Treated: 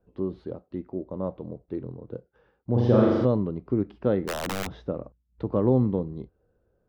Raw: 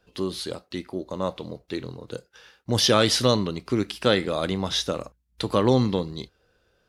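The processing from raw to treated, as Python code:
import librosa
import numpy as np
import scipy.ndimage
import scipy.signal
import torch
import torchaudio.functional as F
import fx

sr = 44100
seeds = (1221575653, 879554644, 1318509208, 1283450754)

y = scipy.signal.sosfilt(scipy.signal.bessel(2, 530.0, 'lowpass', norm='mag', fs=sr, output='sos'), x)
y = fx.room_flutter(y, sr, wall_m=7.1, rt60_s=1.4, at=(2.75, 3.24), fade=0.02)
y = fx.overflow_wrap(y, sr, gain_db=22.5, at=(4.27, 4.7), fade=0.02)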